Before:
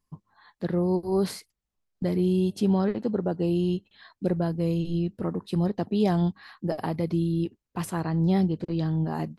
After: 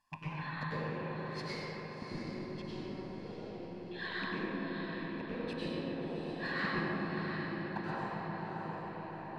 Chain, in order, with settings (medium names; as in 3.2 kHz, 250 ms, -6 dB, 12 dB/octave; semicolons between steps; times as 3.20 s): rattle on loud lows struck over -35 dBFS, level -36 dBFS; low-pass that closes with the level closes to 1.1 kHz, closed at -20 dBFS; bass shelf 380 Hz -11.5 dB; peak limiter -26 dBFS, peak gain reduction 8 dB; inverted gate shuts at -30 dBFS, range -29 dB; feedback comb 79 Hz, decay 1.4 s, harmonics all, mix 60%; echo that smears into a reverb 687 ms, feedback 47%, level -7 dB; overdrive pedal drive 15 dB, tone 1.8 kHz, clips at -33.5 dBFS; feedback echo behind a low-pass 133 ms, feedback 85%, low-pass 1.3 kHz, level -7 dB; reverberation RT60 2.0 s, pre-delay 95 ms, DRR -7.5 dB; trim +6 dB